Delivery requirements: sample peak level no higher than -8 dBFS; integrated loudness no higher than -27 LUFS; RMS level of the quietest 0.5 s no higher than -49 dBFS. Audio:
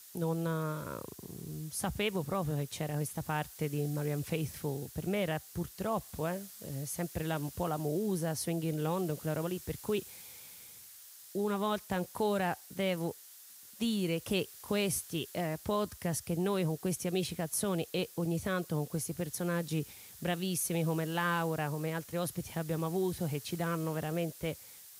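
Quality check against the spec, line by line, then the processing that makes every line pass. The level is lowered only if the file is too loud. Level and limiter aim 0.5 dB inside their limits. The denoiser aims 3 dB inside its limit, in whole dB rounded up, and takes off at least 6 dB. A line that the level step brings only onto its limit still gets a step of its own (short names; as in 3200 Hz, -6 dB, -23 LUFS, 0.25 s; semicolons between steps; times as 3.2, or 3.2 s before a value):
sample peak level -18.5 dBFS: OK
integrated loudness -35.0 LUFS: OK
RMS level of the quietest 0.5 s -54 dBFS: OK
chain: none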